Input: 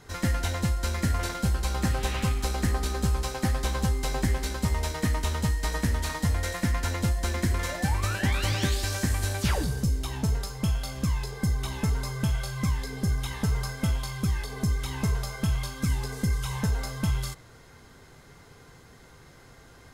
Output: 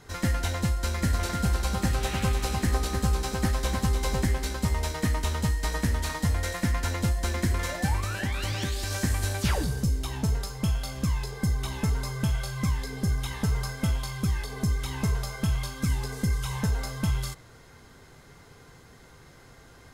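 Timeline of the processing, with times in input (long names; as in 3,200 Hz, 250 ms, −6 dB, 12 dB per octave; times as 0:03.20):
0:00.72–0:04.25: single-tap delay 300 ms −6.5 dB
0:08.00–0:08.91: downward compressor 2 to 1, threshold −28 dBFS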